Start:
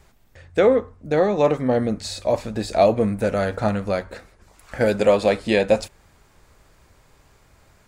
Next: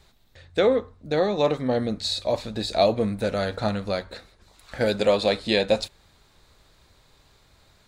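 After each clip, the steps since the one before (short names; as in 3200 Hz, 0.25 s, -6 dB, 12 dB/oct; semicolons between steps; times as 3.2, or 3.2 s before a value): bell 3900 Hz +13 dB 0.49 oct; gain -4 dB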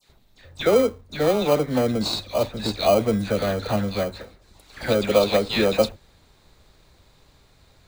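dispersion lows, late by 93 ms, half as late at 1500 Hz; in parallel at -7 dB: sample-rate reducer 1800 Hz, jitter 0%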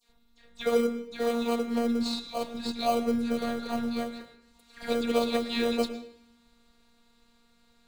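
robotiser 235 Hz; on a send at -9.5 dB: reverb RT60 0.65 s, pre-delay 0.101 s; on the sum: gain -6 dB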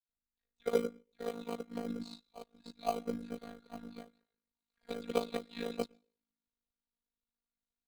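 AM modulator 53 Hz, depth 85%; upward expander 2.5:1, over -46 dBFS; gain +1.5 dB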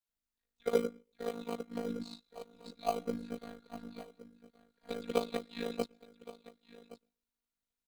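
echo 1.119 s -17.5 dB; gain +1 dB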